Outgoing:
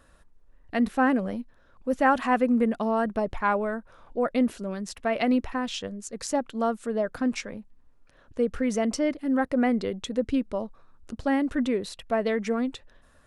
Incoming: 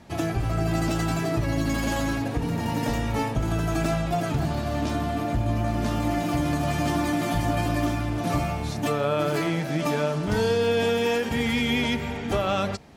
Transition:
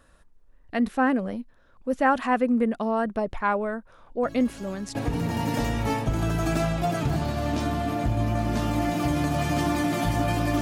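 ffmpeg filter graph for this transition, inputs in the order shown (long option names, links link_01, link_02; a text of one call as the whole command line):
ffmpeg -i cue0.wav -i cue1.wav -filter_complex "[1:a]asplit=2[link_01][link_02];[0:a]apad=whole_dur=10.61,atrim=end=10.61,atrim=end=4.952[link_03];[link_02]atrim=start=2.238:end=7.9[link_04];[link_01]atrim=start=1.52:end=2.24,asetpts=PTS-STARTPTS,volume=-18dB,afade=type=in:duration=0.004:curve=hsin,afade=type=out:start_time=0.716:duration=0.004:curve=hsin,adelay=4230[link_05];[link_03][link_04]acrossfade=duration=0.004:curve1=hsin:curve2=hsin[link_06];[link_06][link_05]amix=inputs=2:normalize=0" out.wav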